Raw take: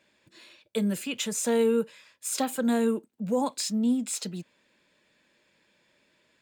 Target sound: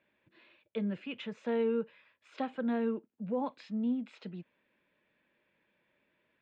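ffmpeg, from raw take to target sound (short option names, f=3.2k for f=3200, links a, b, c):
-af "lowpass=f=2.9k:w=0.5412,lowpass=f=2.9k:w=1.3066,volume=-7dB"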